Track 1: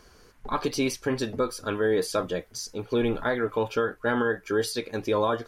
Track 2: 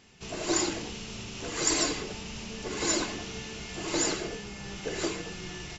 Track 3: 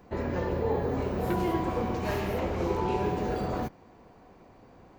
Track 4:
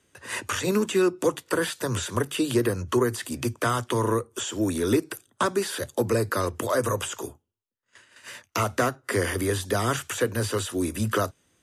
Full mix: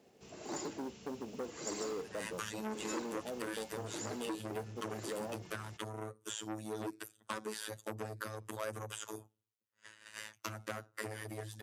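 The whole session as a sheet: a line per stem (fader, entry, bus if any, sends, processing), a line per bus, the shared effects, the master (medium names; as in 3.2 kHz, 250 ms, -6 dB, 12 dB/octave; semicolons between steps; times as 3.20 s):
-5.0 dB, 0.00 s, bus A, no send, Chebyshev band-pass 150–820 Hz, order 4; companded quantiser 6-bit
-13.5 dB, 0.00 s, no bus, no send, peaking EQ 3.1 kHz -4.5 dB 1.8 oct
mute
-1.5 dB, 1.90 s, bus A, no send, robot voice 108 Hz
bus A: 0.0 dB, compression 2:1, threshold -42 dBFS, peak gain reduction 12 dB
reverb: none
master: high-pass 82 Hz 12 dB/octave; transformer saturation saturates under 2.8 kHz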